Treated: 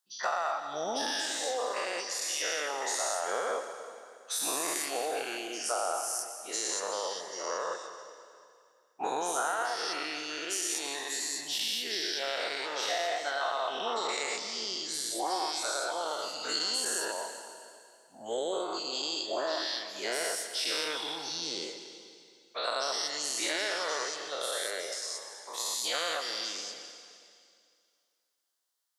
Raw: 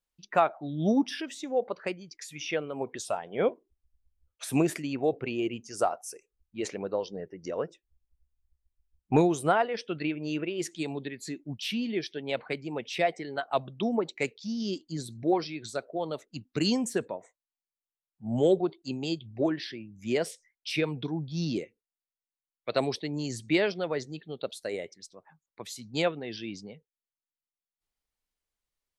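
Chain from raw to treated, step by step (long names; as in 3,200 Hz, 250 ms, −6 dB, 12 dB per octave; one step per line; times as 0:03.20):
every bin's largest magnitude spread in time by 240 ms
high-pass filter 1,100 Hz 12 dB per octave
parametric band 2,400 Hz −14 dB 0.62 octaves
downward compressor, threshold −32 dBFS, peak gain reduction 11 dB
convolution reverb RT60 2.3 s, pre-delay 118 ms, DRR 8 dB
level +3.5 dB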